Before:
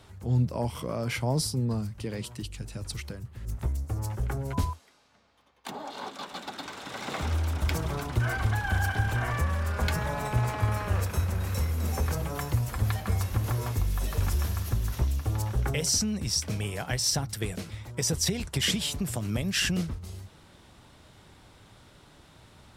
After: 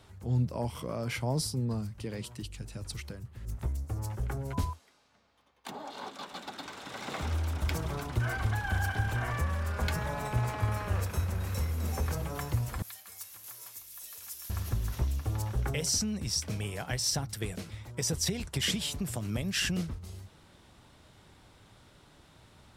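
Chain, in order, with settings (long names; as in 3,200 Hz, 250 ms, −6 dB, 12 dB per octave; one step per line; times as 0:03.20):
0:12.82–0:14.50: first difference
level −3.5 dB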